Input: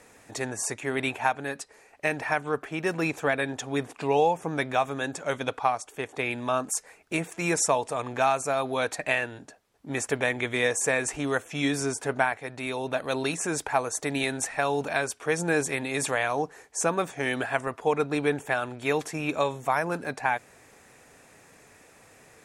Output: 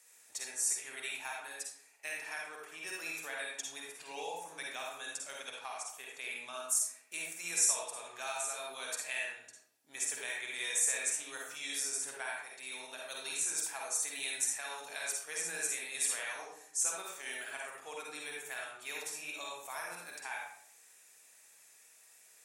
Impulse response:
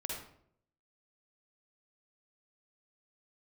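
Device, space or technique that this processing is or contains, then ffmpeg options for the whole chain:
bathroom: -filter_complex "[0:a]asettb=1/sr,asplit=3[s0][s1][s2];[s0]atrim=end=16.334[s3];[s1]atrim=start=16.33:end=17.25,asetpts=PTS-STARTPTS,afade=t=in:d=0.004:c=qsin,afade=t=out:st=0.916:d=0.004:c=qsin,highpass=180[s4];[s2]atrim=start=17.246[s5];[s3][s4]acrossfade=d=0.004:c1=hsin:c2=qsin[s6];[s6][s5]acrossfade=d=0.004:c1=qsin:c2=hsin[s7];[1:a]atrim=start_sample=2205[s8];[s7][s8]afir=irnorm=-1:irlink=0,aderivative,bandreject=f=71.21:t=h:w=4,bandreject=f=142.42:t=h:w=4,bandreject=f=213.63:t=h:w=4,bandreject=f=284.84:t=h:w=4,bandreject=f=356.05:t=h:w=4,bandreject=f=427.26:t=h:w=4,bandreject=f=498.47:t=h:w=4,bandreject=f=569.68:t=h:w=4,bandreject=f=640.89:t=h:w=4,bandreject=f=712.1:t=h:w=4,bandreject=f=783.31:t=h:w=4,bandreject=f=854.52:t=h:w=4,bandreject=f=925.73:t=h:w=4,bandreject=f=996.94:t=h:w=4,bandreject=f=1068.15:t=h:w=4,bandreject=f=1139.36:t=h:w=4,bandreject=f=1210.57:t=h:w=4,bandreject=f=1281.78:t=h:w=4,bandreject=f=1352.99:t=h:w=4,bandreject=f=1424.2:t=h:w=4,bandreject=f=1495.41:t=h:w=4,bandreject=f=1566.62:t=h:w=4,bandreject=f=1637.83:t=h:w=4,bandreject=f=1709.04:t=h:w=4,bandreject=f=1780.25:t=h:w=4,bandreject=f=1851.46:t=h:w=4,bandreject=f=1922.67:t=h:w=4,bandreject=f=1993.88:t=h:w=4,bandreject=f=2065.09:t=h:w=4,bandreject=f=2136.3:t=h:w=4,bandreject=f=2207.51:t=h:w=4,bandreject=f=2278.72:t=h:w=4,bandreject=f=2349.93:t=h:w=4,bandreject=f=2421.14:t=h:w=4,bandreject=f=2492.35:t=h:w=4,bandreject=f=2563.56:t=h:w=4"

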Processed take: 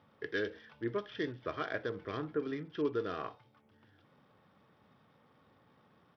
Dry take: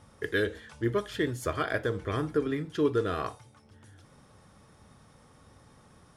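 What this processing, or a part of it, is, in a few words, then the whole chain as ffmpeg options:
Bluetooth headset: -af "highpass=150,aresample=8000,aresample=44100,volume=0.447" -ar 44100 -c:a sbc -b:a 64k

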